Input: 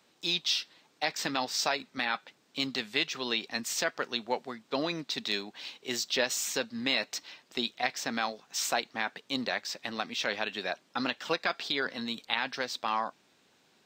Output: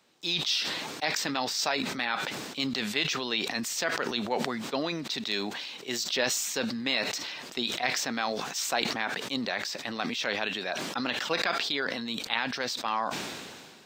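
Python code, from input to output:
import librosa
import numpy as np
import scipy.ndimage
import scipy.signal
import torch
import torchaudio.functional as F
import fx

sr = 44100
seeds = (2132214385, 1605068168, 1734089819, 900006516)

y = fx.sustainer(x, sr, db_per_s=31.0)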